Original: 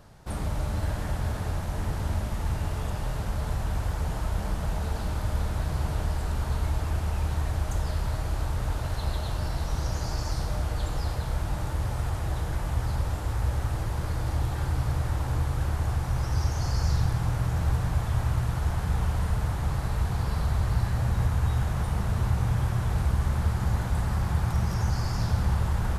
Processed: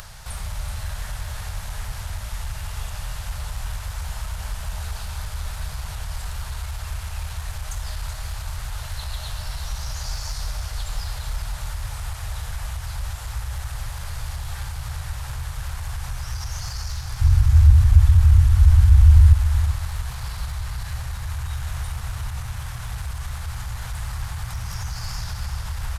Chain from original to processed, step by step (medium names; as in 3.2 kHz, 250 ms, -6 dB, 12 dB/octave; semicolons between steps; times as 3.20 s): peak limiter -20 dBFS, peak gain reduction 6.5 dB; overload inside the chain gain 23 dB; 17.21–19.33 s: resonant low shelf 130 Hz +13 dB, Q 3; upward compressor, threshold -28 dBFS; amplifier tone stack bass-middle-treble 10-0-10; feedback delay 379 ms, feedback 42%, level -9 dB; trim +7.5 dB